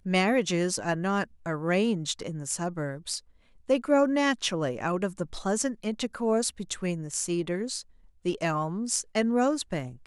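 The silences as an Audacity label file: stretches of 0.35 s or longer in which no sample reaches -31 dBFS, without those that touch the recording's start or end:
3.180000	3.700000	silence
7.800000	8.260000	silence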